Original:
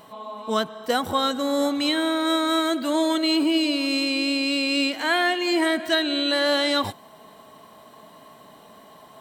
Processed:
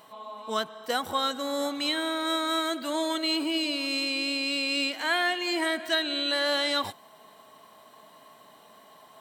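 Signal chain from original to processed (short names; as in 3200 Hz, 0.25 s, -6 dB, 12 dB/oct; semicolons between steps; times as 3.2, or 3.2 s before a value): low shelf 430 Hz -9 dB; gain -3 dB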